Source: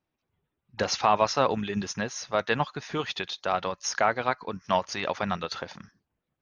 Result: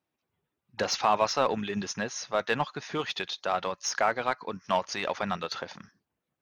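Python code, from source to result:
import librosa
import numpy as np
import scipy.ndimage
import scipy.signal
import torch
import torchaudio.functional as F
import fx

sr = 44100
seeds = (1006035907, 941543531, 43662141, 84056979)

p1 = fx.highpass(x, sr, hz=160.0, slope=6)
p2 = np.clip(p1, -10.0 ** (-26.0 / 20.0), 10.0 ** (-26.0 / 20.0))
p3 = p1 + (p2 * librosa.db_to_amplitude(-8.0))
y = p3 * librosa.db_to_amplitude(-3.0)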